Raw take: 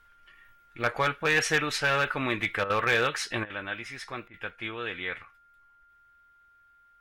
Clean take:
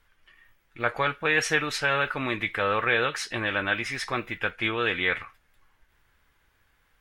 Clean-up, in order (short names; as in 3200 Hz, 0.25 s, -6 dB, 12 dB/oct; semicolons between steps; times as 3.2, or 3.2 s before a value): clip repair -17 dBFS; notch 1400 Hz, Q 30; interpolate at 2.64/3.44/4.28, 57 ms; gain 0 dB, from 3.45 s +8.5 dB